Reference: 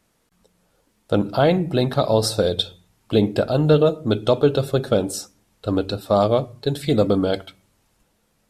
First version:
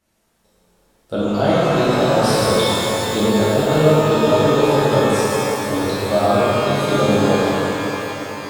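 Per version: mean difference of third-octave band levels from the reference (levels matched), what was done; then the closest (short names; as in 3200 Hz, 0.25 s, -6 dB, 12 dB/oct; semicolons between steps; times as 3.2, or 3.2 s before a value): 12.5 dB: shimmer reverb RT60 3.8 s, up +12 st, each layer -8 dB, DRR -11.5 dB; gain -8 dB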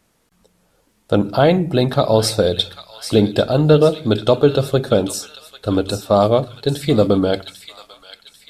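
1.5 dB: thin delay 0.794 s, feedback 43%, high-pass 1900 Hz, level -8.5 dB; gain +3.5 dB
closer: second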